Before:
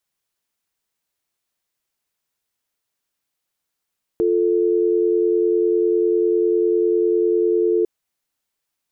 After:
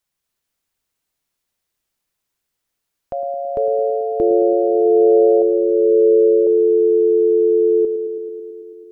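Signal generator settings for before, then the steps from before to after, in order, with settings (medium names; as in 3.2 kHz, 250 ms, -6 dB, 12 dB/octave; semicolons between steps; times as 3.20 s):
call progress tone dial tone, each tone -17.5 dBFS 3.65 s
bass shelf 80 Hz +8.5 dB; ever faster or slower copies 238 ms, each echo +4 st, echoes 2; on a send: band-passed feedback delay 109 ms, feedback 84%, band-pass 310 Hz, level -10 dB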